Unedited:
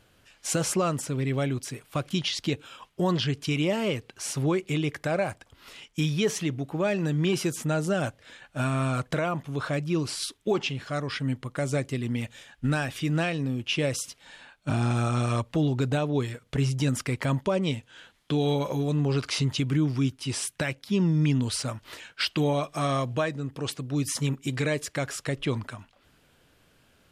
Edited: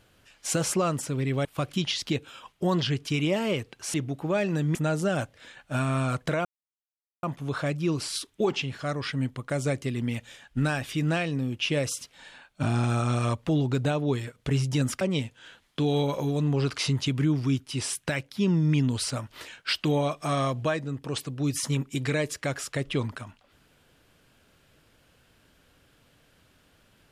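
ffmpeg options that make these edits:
-filter_complex "[0:a]asplit=6[a][b][c][d][e][f];[a]atrim=end=1.452[g];[b]atrim=start=1.818:end=4.312[h];[c]atrim=start=6.438:end=7.252[i];[d]atrim=start=7.598:end=9.3,asetpts=PTS-STARTPTS,afade=t=out:st=1.698:d=0.004:c=hsin,apad=pad_dur=0.78[j];[e]atrim=start=9.3:end=17.082,asetpts=PTS-STARTPTS,afade=t=in:d=0.004:c=hsin[k];[f]atrim=start=17.528[l];[g][h]acrossfade=d=0.004:c1=hsin:c2=hsin[m];[m][i]acrossfade=d=0.004:c1=hsin:c2=hsin[n];[j][k]concat=n=2:v=0:a=1[o];[n][o]acrossfade=d=0.004:c1=hsin:c2=hsin[p];[p][l]acrossfade=d=0.004:c1=hsin:c2=hsin"

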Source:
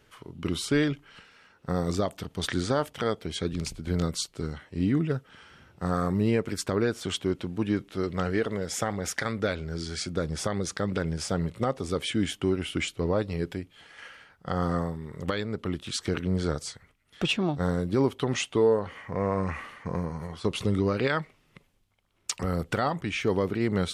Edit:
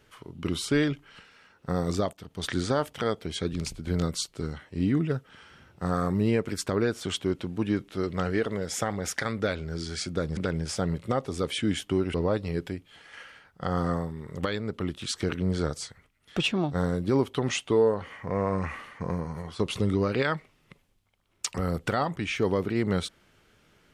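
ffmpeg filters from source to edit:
-filter_complex "[0:a]asplit=4[a][b][c][d];[a]atrim=end=2.13,asetpts=PTS-STARTPTS,afade=t=out:st=2.126:d=0.004:c=hsin:silence=0.237137[e];[b]atrim=start=2.13:end=10.372,asetpts=PTS-STARTPTS,afade=t=in:d=0.44:silence=0.237137[f];[c]atrim=start=10.888:end=12.662[g];[d]atrim=start=12.988[h];[e][f]concat=n=2:v=0:a=1[i];[i][g]acrossfade=d=0.004:c1=hsin:c2=hsin[j];[j][h]acrossfade=d=0.004:c1=hsin:c2=hsin"

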